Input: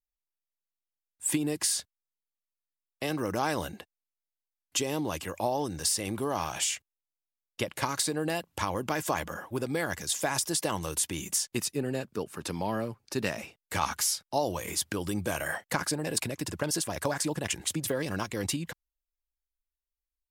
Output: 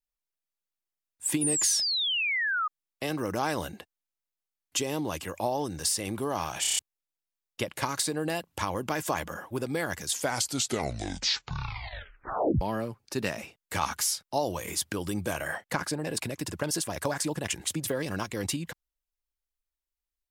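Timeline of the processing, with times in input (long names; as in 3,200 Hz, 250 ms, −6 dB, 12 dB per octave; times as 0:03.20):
0:01.41–0:02.68: sound drawn into the spectrogram fall 1,200–10,000 Hz −28 dBFS
0:06.61: stutter in place 0.03 s, 6 plays
0:10.09: tape stop 2.52 s
0:15.33–0:16.24: high-shelf EQ 5,200 Hz −5.5 dB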